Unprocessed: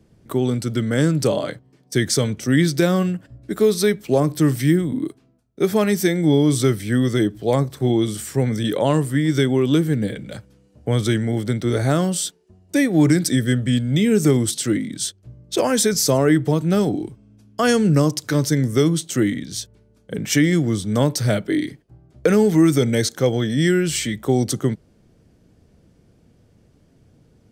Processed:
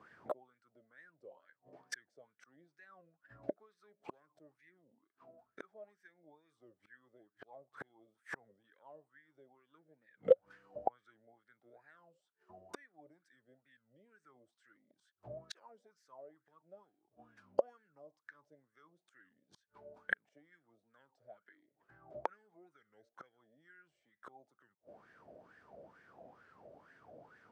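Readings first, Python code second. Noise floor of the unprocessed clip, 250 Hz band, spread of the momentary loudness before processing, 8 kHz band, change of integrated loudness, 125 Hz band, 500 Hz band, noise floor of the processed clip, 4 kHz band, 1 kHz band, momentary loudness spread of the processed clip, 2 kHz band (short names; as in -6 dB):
-57 dBFS, under -40 dB, 11 LU, under -35 dB, -22.0 dB, under -40 dB, -22.0 dB, under -85 dBFS, -34.5 dB, -19.5 dB, 23 LU, -20.5 dB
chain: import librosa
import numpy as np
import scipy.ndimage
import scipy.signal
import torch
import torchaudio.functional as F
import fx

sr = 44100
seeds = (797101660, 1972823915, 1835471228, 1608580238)

p1 = fx.rider(x, sr, range_db=10, speed_s=0.5)
p2 = x + (p1 * 10.0 ** (0.5 / 20.0))
p3 = fx.gate_flip(p2, sr, shuts_db=-13.0, range_db=-41)
p4 = fx.wah_lfo(p3, sr, hz=2.2, low_hz=580.0, high_hz=1700.0, q=9.4)
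p5 = fx.record_warp(p4, sr, rpm=33.33, depth_cents=160.0)
y = p5 * 10.0 ** (10.5 / 20.0)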